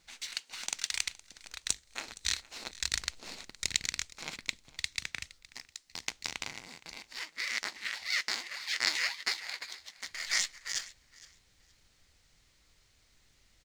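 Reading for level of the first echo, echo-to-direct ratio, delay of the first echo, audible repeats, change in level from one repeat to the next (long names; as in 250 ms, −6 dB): −20.0 dB, −20.0 dB, 466 ms, 2, −14.5 dB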